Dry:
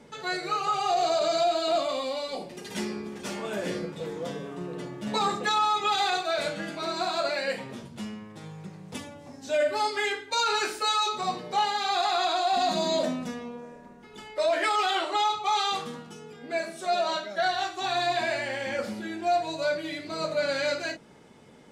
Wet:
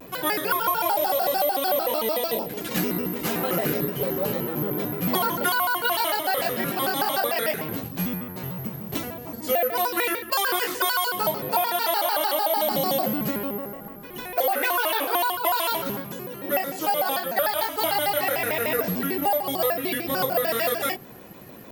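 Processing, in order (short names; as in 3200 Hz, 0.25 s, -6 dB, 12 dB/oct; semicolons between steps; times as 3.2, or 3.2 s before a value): careless resampling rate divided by 3×, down none, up zero stuff; compressor 5:1, threshold -23 dBFS, peak gain reduction 9.5 dB; high shelf 5900 Hz -9.5 dB; shaped vibrato square 6.7 Hz, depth 250 cents; gain +8.5 dB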